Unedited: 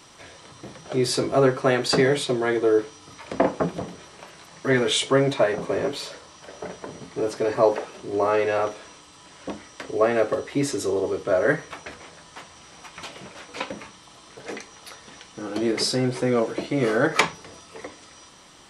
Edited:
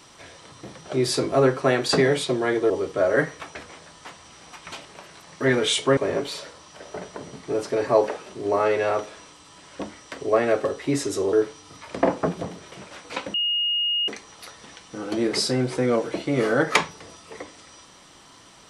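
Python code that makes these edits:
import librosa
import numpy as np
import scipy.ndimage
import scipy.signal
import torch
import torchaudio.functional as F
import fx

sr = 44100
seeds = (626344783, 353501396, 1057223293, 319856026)

y = fx.edit(x, sr, fx.swap(start_s=2.7, length_s=1.39, other_s=11.01, other_length_s=2.15),
    fx.cut(start_s=5.21, length_s=0.44),
    fx.bleep(start_s=13.78, length_s=0.74, hz=2860.0, db=-20.5), tone=tone)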